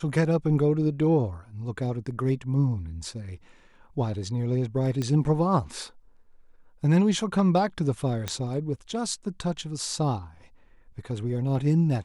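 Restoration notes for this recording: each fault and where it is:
5.02 s: pop -17 dBFS
8.28 s: pop -13 dBFS

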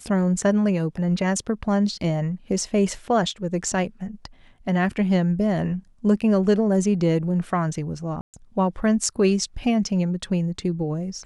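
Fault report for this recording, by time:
8.21–8.34 s: dropout 128 ms

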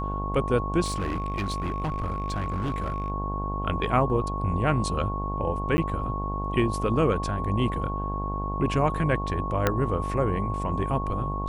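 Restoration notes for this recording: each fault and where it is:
buzz 50 Hz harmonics 22 -31 dBFS
whine 1.1 kHz -32 dBFS
0.84–3.10 s: clipped -24 dBFS
5.77–5.78 s: dropout 10 ms
9.67 s: pop -7 dBFS

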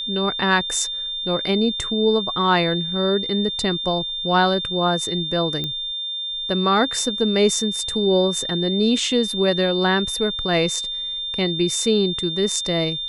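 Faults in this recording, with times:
whine 3.6 kHz -25 dBFS
5.64 s: pop -13 dBFS

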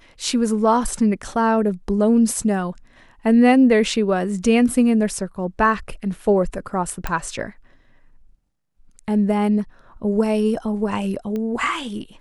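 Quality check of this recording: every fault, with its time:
7.07 s: pop -10 dBFS
11.36 s: pop -17 dBFS

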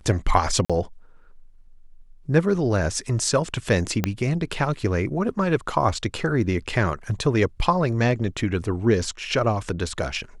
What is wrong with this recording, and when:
0.65–0.70 s: dropout 46 ms
4.04 s: pop -7 dBFS

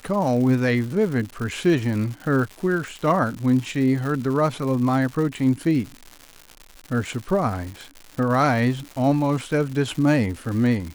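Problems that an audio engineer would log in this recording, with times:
crackle 220 per s -30 dBFS

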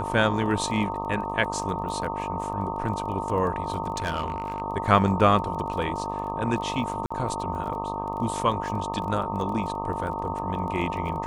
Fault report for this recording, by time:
buzz 50 Hz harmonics 25 -33 dBFS
crackle 18 per s -34 dBFS
whine 910 Hz -31 dBFS
3.96–4.62 s: clipped -22.5 dBFS
7.06–7.11 s: dropout 45 ms

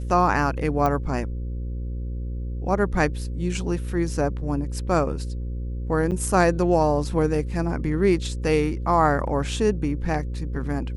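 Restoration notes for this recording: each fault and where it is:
buzz 60 Hz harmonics 9 -29 dBFS
0.86 s: pop -12 dBFS
6.11–6.12 s: dropout 8.9 ms

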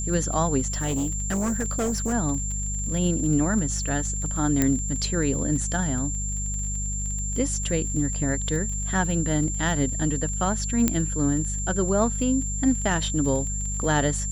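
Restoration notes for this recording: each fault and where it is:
crackle 25 per s -31 dBFS
hum 50 Hz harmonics 4 -30 dBFS
whine 7.3 kHz -30 dBFS
0.72–2.14 s: clipped -21.5 dBFS
4.62 s: pop -7 dBFS
10.88 s: pop -6 dBFS

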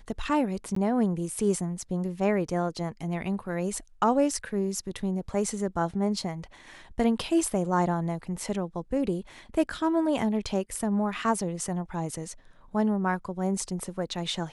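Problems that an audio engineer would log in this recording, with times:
0.75–0.76 s: dropout 14 ms

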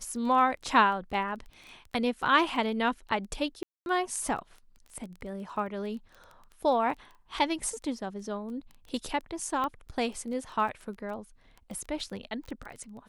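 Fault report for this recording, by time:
crackle 14 per s -38 dBFS
3.63–3.86 s: dropout 231 ms
9.64 s: pop -20 dBFS

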